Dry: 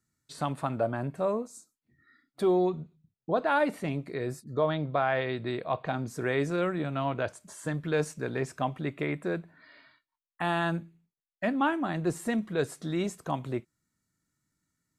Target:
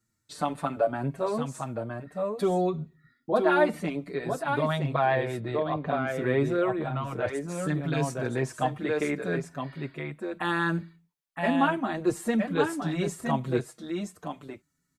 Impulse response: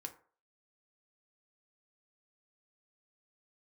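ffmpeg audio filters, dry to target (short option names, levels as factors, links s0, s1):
-filter_complex "[0:a]asettb=1/sr,asplit=3[s0][s1][s2];[s0]atrim=end=5.154[s3];[s1]atrim=start=5.15:end=7.27,asetpts=PTS-STARTPTS,afade=t=in:d=0.004:c=qsin,afade=t=out:st=2.116:d=0.004:c=qsin,equalizer=f=6000:w=0.35:g=-8[s4];[s2]atrim=start=7.266[s5];[s3][s4]acrossfade=d=0.004:c1=hsin:c2=qsin[s6];[s6][s5]acrossfade=d=0.004:c1=qsin:c2=hsin,aecho=1:1:966:0.531,asplit=2[s7][s8];[s8]adelay=6,afreqshift=-0.58[s9];[s7][s9]amix=inputs=2:normalize=1,volume=1.78"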